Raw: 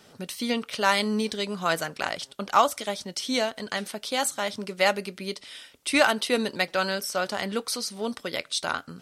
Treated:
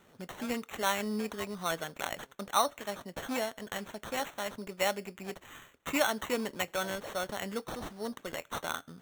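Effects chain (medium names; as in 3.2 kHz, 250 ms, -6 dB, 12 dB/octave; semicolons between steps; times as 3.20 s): low-pass that closes with the level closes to 2.5 kHz, closed at -18 dBFS; sample-rate reducer 4.9 kHz, jitter 0%; trim -7.5 dB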